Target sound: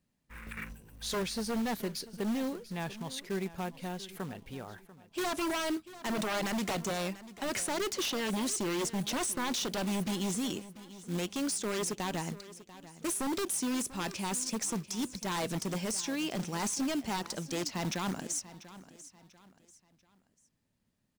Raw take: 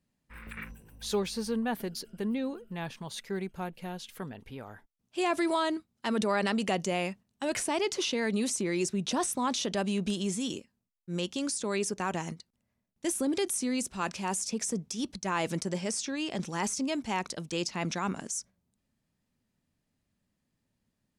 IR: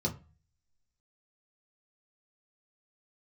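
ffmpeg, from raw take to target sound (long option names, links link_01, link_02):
-af "aeval=exprs='0.0422*(abs(mod(val(0)/0.0422+3,4)-2)-1)':channel_layout=same,aecho=1:1:691|1382|2073:0.15|0.0524|0.0183,acrusher=bits=4:mode=log:mix=0:aa=0.000001"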